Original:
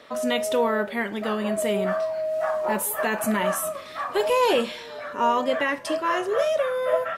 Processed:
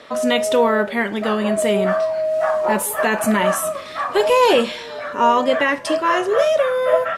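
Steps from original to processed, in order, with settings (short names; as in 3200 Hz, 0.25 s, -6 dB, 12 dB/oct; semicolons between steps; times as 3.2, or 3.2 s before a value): LPF 11000 Hz 12 dB/oct; gain +6.5 dB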